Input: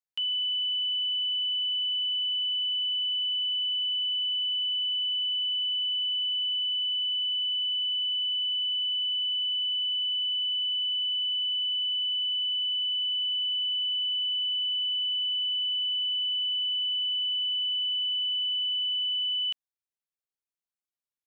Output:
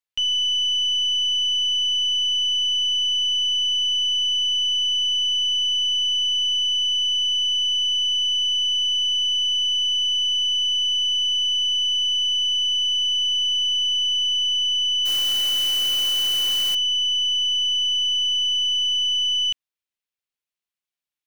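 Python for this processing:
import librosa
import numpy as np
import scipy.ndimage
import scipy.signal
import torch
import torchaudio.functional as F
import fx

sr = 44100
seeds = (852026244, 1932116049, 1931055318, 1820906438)

y = fx.tracing_dist(x, sr, depth_ms=0.026)
y = fx.peak_eq(y, sr, hz=2800.0, db=7.5, octaves=1.5)
y = fx.mod_noise(y, sr, seeds[0], snr_db=13, at=(15.05, 16.75))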